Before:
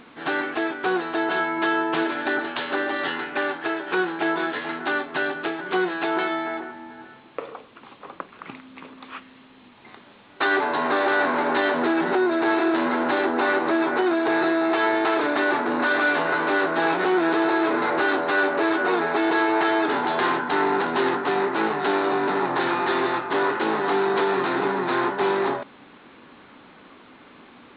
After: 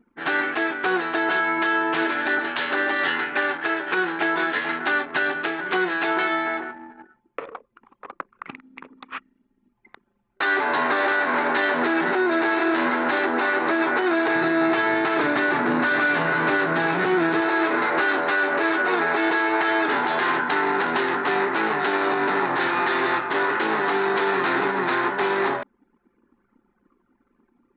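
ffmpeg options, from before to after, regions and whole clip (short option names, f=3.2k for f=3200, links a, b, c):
-filter_complex "[0:a]asettb=1/sr,asplit=3[a][b][c];[a]atrim=end=14.354[d];[b]atrim=start=14.35:end=17.41,asetpts=PTS-STARTPTS,afade=t=in:d=0.004:c=qsin,afade=t=out:st=3.056:d=0.004:c=qsin,highpass=59,equalizer=f=140:w=0.97:g=13.5[e];[c]atrim=start=17.406[f];[d][e]acrossfade=d=0.004:c1=hsin:c2=qsin[g];[g][f]acrossfade=d=0.004:c1=qsin:c2=hsin,anlmdn=1.58,equalizer=f=1.9k:t=o:w=1.4:g=7,alimiter=limit=-13dB:level=0:latency=1:release=80"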